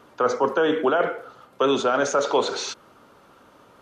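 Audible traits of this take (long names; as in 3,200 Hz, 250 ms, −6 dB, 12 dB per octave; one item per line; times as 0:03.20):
background noise floor −54 dBFS
spectral slope −3.0 dB per octave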